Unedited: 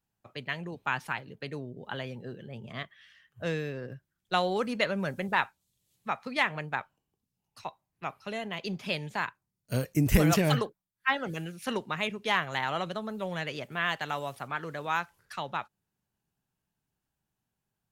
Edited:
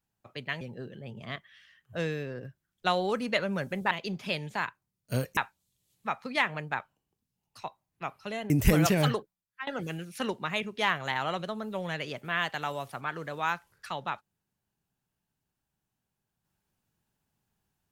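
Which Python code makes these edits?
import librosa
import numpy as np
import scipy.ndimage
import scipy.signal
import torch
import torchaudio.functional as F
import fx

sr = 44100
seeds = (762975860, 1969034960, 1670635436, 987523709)

y = fx.edit(x, sr, fx.cut(start_s=0.61, length_s=1.47),
    fx.move(start_s=8.51, length_s=1.46, to_s=5.38),
    fx.fade_out_to(start_s=10.63, length_s=0.51, curve='qsin', floor_db=-21.0), tone=tone)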